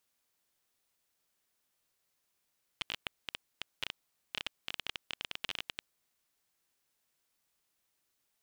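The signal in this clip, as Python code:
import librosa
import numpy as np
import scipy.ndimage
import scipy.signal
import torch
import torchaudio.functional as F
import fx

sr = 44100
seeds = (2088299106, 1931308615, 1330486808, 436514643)

y = fx.geiger_clicks(sr, seeds[0], length_s=3.11, per_s=15.0, level_db=-18.5)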